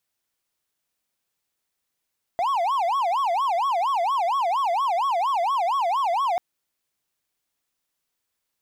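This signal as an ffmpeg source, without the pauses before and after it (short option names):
-f lavfi -i "aevalsrc='0.126*(1-4*abs(mod((896.5*t-223.5/(2*PI*4.3)*sin(2*PI*4.3*t))+0.25,1)-0.5))':d=3.99:s=44100"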